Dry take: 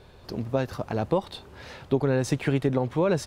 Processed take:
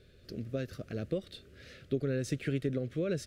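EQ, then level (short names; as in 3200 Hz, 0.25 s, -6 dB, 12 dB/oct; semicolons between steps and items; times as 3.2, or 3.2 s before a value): Butterworth band-stop 900 Hz, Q 1; -8.0 dB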